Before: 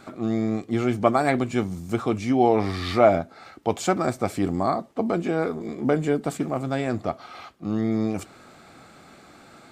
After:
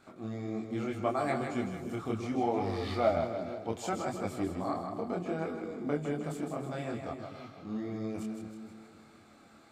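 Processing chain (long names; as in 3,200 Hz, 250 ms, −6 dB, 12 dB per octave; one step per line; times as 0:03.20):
echo with a time of its own for lows and highs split 460 Hz, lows 258 ms, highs 158 ms, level −6 dB
multi-voice chorus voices 2, 0.71 Hz, delay 24 ms, depth 4.2 ms
level −8.5 dB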